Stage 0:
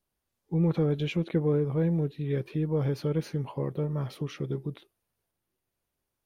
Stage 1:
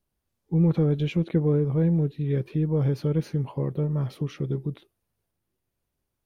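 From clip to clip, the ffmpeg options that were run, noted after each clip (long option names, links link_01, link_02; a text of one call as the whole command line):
ffmpeg -i in.wav -af "lowshelf=frequency=310:gain=7.5,volume=-1dB" out.wav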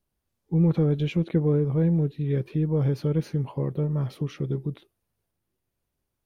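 ffmpeg -i in.wav -af anull out.wav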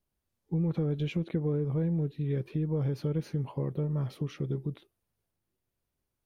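ffmpeg -i in.wav -af "acompressor=threshold=-23dB:ratio=4,volume=-3.5dB" out.wav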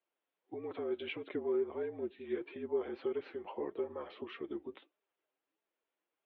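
ffmpeg -i in.wav -af "flanger=delay=4.1:depth=5:regen=38:speed=1.6:shape=sinusoidal,highpass=frequency=420:width_type=q:width=0.5412,highpass=frequency=420:width_type=q:width=1.307,lowpass=frequency=3400:width_type=q:width=0.5176,lowpass=frequency=3400:width_type=q:width=0.7071,lowpass=frequency=3400:width_type=q:width=1.932,afreqshift=-57,volume=5.5dB" out.wav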